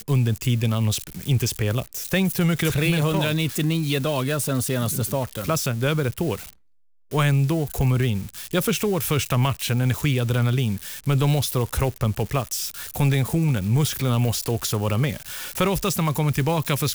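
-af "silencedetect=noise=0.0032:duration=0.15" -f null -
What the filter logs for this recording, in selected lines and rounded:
silence_start: 6.55
silence_end: 7.11 | silence_duration: 0.56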